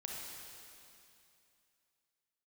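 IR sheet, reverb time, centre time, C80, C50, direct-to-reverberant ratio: 2.7 s, 0.139 s, 0.5 dB, -1.5 dB, -2.5 dB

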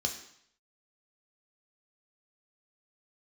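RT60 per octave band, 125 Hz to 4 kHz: 0.70, 0.60, 0.65, 0.70, 0.70, 0.70 s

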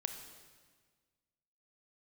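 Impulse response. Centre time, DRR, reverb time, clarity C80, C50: 27 ms, 6.0 dB, 1.5 s, 8.5 dB, 7.5 dB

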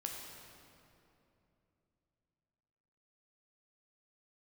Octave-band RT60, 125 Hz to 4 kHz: 3.9, 3.6, 3.1, 2.6, 2.3, 1.9 s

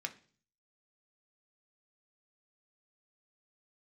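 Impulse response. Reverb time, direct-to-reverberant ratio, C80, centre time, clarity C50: 0.45 s, 4.5 dB, 21.0 dB, 6 ms, 16.0 dB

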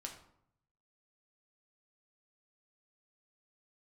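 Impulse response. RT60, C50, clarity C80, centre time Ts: 0.70 s, 8.0 dB, 11.0 dB, 20 ms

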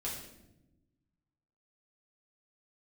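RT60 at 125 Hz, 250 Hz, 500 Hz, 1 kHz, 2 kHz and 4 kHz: 1.9, 1.6, 1.1, 0.75, 0.70, 0.65 s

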